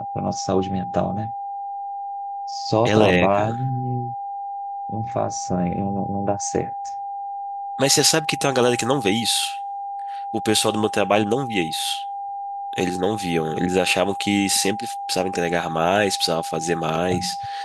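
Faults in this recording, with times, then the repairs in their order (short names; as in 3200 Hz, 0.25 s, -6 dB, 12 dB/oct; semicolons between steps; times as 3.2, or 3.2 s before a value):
tone 800 Hz -27 dBFS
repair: notch 800 Hz, Q 30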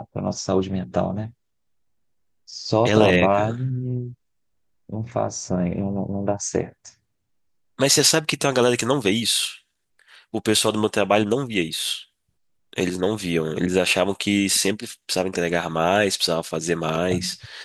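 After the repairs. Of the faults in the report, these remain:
none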